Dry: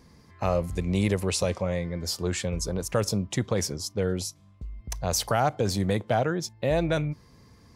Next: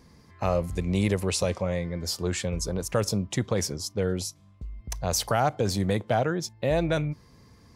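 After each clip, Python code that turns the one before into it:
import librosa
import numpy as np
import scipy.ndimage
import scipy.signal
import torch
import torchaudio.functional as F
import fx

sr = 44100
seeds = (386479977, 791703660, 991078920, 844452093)

y = x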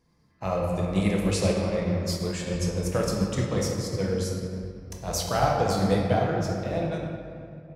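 y = fx.fade_out_tail(x, sr, length_s=1.8)
y = fx.room_shoebox(y, sr, seeds[0], volume_m3=170.0, walls='hard', distance_m=0.65)
y = fx.upward_expand(y, sr, threshold_db=-42.0, expansion=1.5)
y = F.gain(torch.from_numpy(y), -2.0).numpy()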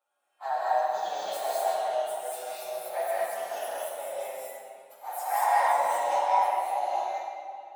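y = fx.partial_stretch(x, sr, pct=121)
y = fx.ladder_highpass(y, sr, hz=670.0, resonance_pct=60)
y = fx.rev_gated(y, sr, seeds[1], gate_ms=260, shape='rising', drr_db=-4.5)
y = F.gain(torch.from_numpy(y), 4.0).numpy()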